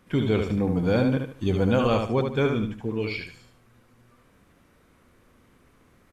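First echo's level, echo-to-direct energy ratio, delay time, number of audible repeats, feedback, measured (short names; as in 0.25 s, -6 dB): -5.5 dB, -5.0 dB, 74 ms, 3, 31%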